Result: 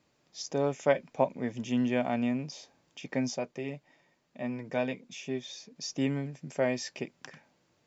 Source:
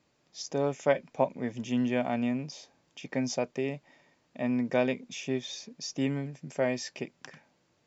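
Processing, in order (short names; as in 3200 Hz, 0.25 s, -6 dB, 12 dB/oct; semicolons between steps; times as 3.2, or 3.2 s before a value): 3.3–5.76 flange 1 Hz, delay 4.8 ms, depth 2.1 ms, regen -47%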